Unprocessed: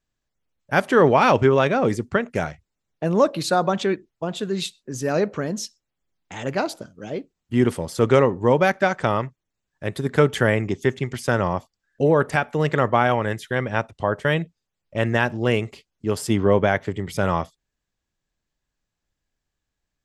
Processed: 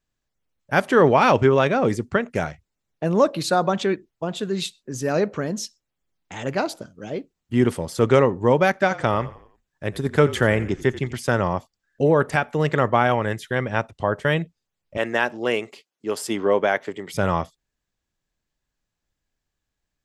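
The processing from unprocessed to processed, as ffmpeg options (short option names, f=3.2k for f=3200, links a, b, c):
-filter_complex "[0:a]asettb=1/sr,asplit=3[a][b][c];[a]atrim=end=8.794[d];[b]atrim=start=8.79:end=11.18,asetpts=PTS-STARTPTS,afade=t=in:d=0.004:c=qsin,afade=t=out:st=2.386:d=0.004:c=qsin,asplit=5[e][f][g][h][i];[f]adelay=87,afreqshift=-40,volume=-17dB[j];[g]adelay=174,afreqshift=-80,volume=-24.3dB[k];[h]adelay=261,afreqshift=-120,volume=-31.7dB[l];[i]adelay=348,afreqshift=-160,volume=-39dB[m];[e][j][k][l][m]amix=inputs=5:normalize=0,atrim=end_sample=105399[n];[c]atrim=start=11.176[o];[d][n]acrossfade=d=0.004:c1=hsin:c2=qsin[p];[p][o]acrossfade=d=0.004:c1=qsin:c2=hsin,asettb=1/sr,asplit=3[q][r][s];[q]atrim=end=14.974[t];[r]atrim=start=14.97:end=17.14,asetpts=PTS-STARTPTS,afade=t=in:d=0.004:c=qsin,afade=t=out:st=2.166:d=0.004:c=qsin,highpass=320[u];[s]atrim=start=17.136[v];[t][u]acrossfade=d=0.004:c1=hsin:c2=qsin[w];[w][v]acrossfade=d=0.004:c1=qsin:c2=hsin"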